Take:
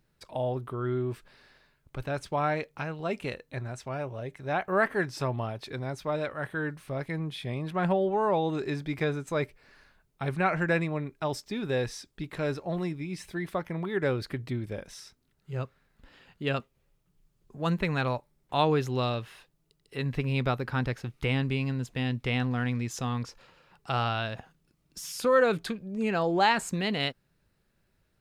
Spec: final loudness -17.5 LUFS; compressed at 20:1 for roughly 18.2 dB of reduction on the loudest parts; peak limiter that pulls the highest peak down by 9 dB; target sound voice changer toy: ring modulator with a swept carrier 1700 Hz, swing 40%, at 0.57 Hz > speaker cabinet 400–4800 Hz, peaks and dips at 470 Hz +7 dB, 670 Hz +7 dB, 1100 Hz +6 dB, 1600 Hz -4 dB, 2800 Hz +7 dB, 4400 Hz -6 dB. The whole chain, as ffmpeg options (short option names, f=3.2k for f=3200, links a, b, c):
-af "acompressor=threshold=-36dB:ratio=20,alimiter=level_in=8dB:limit=-24dB:level=0:latency=1,volume=-8dB,aeval=exprs='val(0)*sin(2*PI*1700*n/s+1700*0.4/0.57*sin(2*PI*0.57*n/s))':c=same,highpass=400,equalizer=f=470:t=q:w=4:g=7,equalizer=f=670:t=q:w=4:g=7,equalizer=f=1.1k:t=q:w=4:g=6,equalizer=f=1.6k:t=q:w=4:g=-4,equalizer=f=2.8k:t=q:w=4:g=7,equalizer=f=4.4k:t=q:w=4:g=-6,lowpass=f=4.8k:w=0.5412,lowpass=f=4.8k:w=1.3066,volume=24dB"